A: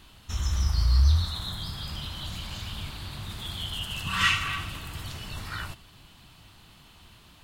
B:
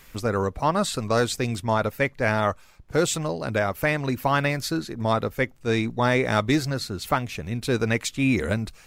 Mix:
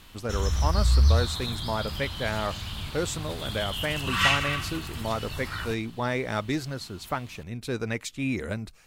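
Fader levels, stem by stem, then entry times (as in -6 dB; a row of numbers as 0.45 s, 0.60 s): +1.0 dB, -7.0 dB; 0.00 s, 0.00 s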